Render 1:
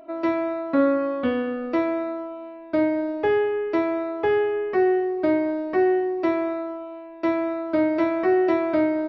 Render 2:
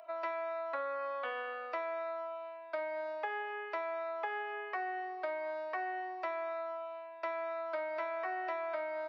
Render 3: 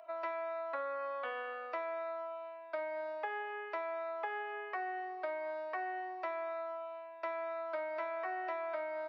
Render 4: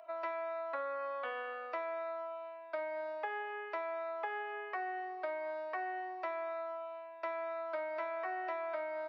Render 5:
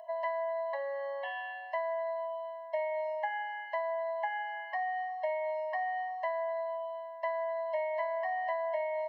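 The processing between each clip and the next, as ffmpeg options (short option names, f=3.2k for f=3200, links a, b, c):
-filter_complex "[0:a]acrossover=split=2700[a][b];[b]acompressor=threshold=-52dB:ratio=4:attack=1:release=60[c];[a][c]amix=inputs=2:normalize=0,highpass=f=690:w=0.5412,highpass=f=690:w=1.3066,acompressor=threshold=-32dB:ratio=6,volume=-2.5dB"
-af "highshelf=f=4.3k:g=-5.5,volume=-1dB"
-af anull
-af "afftfilt=real='re*eq(mod(floor(b*sr/1024/550),2),1)':imag='im*eq(mod(floor(b*sr/1024/550),2),1)':win_size=1024:overlap=0.75,volume=6dB"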